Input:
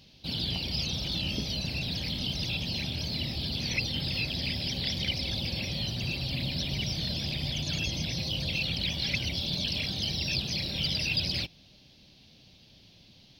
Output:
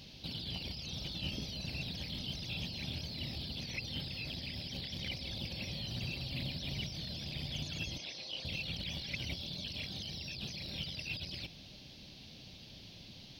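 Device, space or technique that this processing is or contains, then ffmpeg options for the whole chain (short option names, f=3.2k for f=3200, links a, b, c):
de-esser from a sidechain: -filter_complex "[0:a]asplit=2[a][b];[b]highpass=f=4.4k:w=0.5412,highpass=f=4.4k:w=1.3066,apad=whole_len=590558[c];[a][c]sidechaincompress=threshold=-51dB:ratio=8:attack=1.5:release=32,asettb=1/sr,asplit=3[d][e][f];[d]atrim=end=7.984[g];[e]atrim=start=7.98:end=8.45,asetpts=PTS-STARTPTS,afade=t=in:d=0.004:c=qsin,afade=t=out:st=0.466:d=0.004:c=qsin,acrossover=split=320 7900:gain=0.0891 1 0.158[h][i][j];[h][i][j]amix=inputs=3:normalize=0[k];[f]atrim=start=8.446[l];[g][k]acrossfade=d=0.004:c1=hsin:c2=qsin[m];[m][l]acrossfade=d=0.004:c1=qsin:c2=hsin,volume=4dB"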